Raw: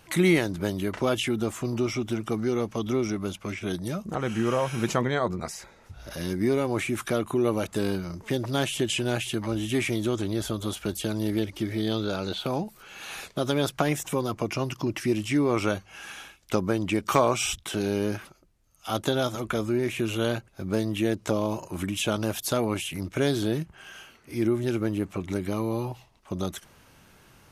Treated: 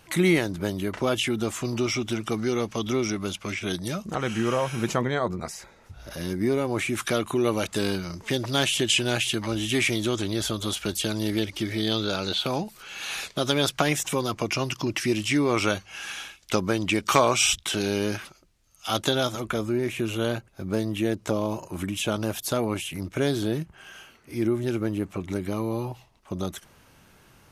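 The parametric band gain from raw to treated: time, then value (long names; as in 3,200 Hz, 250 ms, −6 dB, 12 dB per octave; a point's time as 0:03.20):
parametric band 4,300 Hz 2.9 octaves
0:01.00 +1 dB
0:01.63 +7.5 dB
0:04.13 +7.5 dB
0:04.85 0 dB
0:06.67 0 dB
0:07.09 +8 dB
0:18.99 +8 dB
0:19.66 −0.5 dB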